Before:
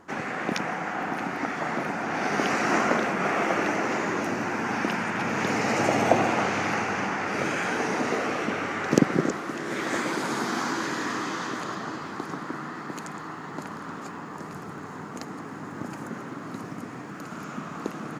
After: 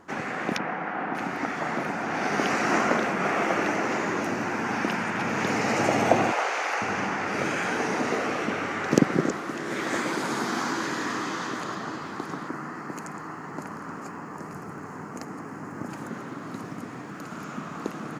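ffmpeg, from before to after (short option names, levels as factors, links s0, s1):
-filter_complex "[0:a]asettb=1/sr,asplit=3[s0][s1][s2];[s0]atrim=end=0.574[s3];[s1]atrim=start=0.57:end=1.15,asetpts=PTS-STARTPTS,afade=t=in:d=0.004:c=qsin,afade=t=out:st=0.576:d=0.004:c=qsin,highpass=140,lowpass=2500[s4];[s2]atrim=start=1.146[s5];[s3][s4]acrossfade=d=0.004:c1=hsin:c2=qsin[s6];[s6][s5]acrossfade=d=0.004:c1=qsin:c2=hsin,asettb=1/sr,asplit=3[s7][s8][s9];[s7]atrim=end=6.324[s10];[s8]atrim=start=6.32:end=6.82,asetpts=PTS-STARTPTS,afade=t=in:d=0.004:c=qsin,afade=t=out:st=0.496:d=0.004:c=qsin,highpass=f=460:w=0.5412,highpass=f=460:w=1.3066[s11];[s9]atrim=start=6.816[s12];[s10][s11]acrossfade=d=0.004:c1=hsin:c2=qsin[s13];[s13][s12]acrossfade=d=0.004:c1=qsin:c2=hsin,asettb=1/sr,asplit=3[s14][s15][s16];[s14]atrim=end=12.484[s17];[s15]atrim=start=12.48:end=15.89,asetpts=PTS-STARTPTS,afade=t=in:d=0.004:c=qsin,afade=t=out:st=3.406:d=0.004:c=qsin,equalizer=f=3600:t=o:w=0.41:g=-15[s18];[s16]atrim=start=15.886[s19];[s17][s18]acrossfade=d=0.004:c1=hsin:c2=qsin[s20];[s20][s19]acrossfade=d=0.004:c1=qsin:c2=hsin"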